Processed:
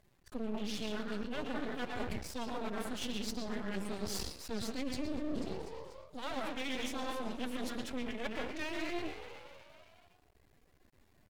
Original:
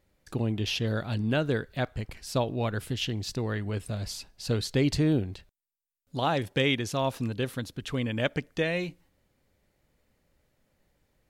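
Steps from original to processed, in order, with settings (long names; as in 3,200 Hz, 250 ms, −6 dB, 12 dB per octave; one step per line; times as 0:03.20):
on a send at −1 dB: convolution reverb RT60 0.50 s, pre-delay 111 ms
on the sum: dynamic equaliser 7,300 Hz, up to +4 dB, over −51 dBFS, Q 0.98
phase-vocoder pitch shift with formants kept +11.5 semitones
echo with shifted repeats 245 ms, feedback 58%, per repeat +76 Hz, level −20.5 dB
reversed playback
downward compressor 10 to 1, threshold −36 dBFS, peak gain reduction 16.5 dB
reversed playback
half-wave rectification
level +4.5 dB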